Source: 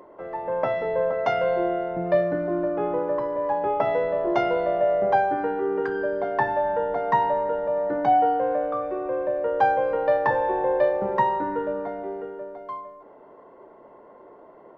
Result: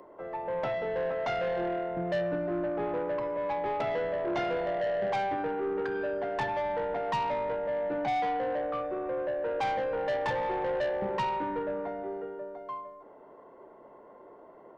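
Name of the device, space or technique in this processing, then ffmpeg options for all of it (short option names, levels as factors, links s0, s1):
one-band saturation: -filter_complex "[0:a]acrossover=split=210|2700[s0][s1][s2];[s1]asoftclip=type=tanh:threshold=0.0668[s3];[s0][s3][s2]amix=inputs=3:normalize=0,volume=0.668"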